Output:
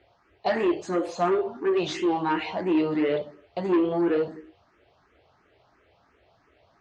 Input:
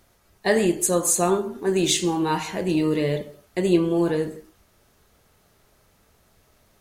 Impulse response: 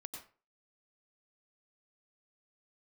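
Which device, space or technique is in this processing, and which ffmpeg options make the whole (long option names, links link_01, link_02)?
barber-pole phaser into a guitar amplifier: -filter_complex "[0:a]asplit=2[link_01][link_02];[link_02]afreqshift=2.9[link_03];[link_01][link_03]amix=inputs=2:normalize=1,asoftclip=type=tanh:threshold=-22dB,highpass=81,equalizer=frequency=100:width_type=q:width=4:gain=-4,equalizer=frequency=150:width_type=q:width=4:gain=-7,equalizer=frequency=210:width_type=q:width=4:gain=-10,equalizer=frequency=310:width_type=q:width=4:gain=3,equalizer=frequency=710:width_type=q:width=4:gain=4,equalizer=frequency=3700:width_type=q:width=4:gain=-5,lowpass=frequency=4000:width=0.5412,lowpass=frequency=4000:width=1.3066,volume=3.5dB"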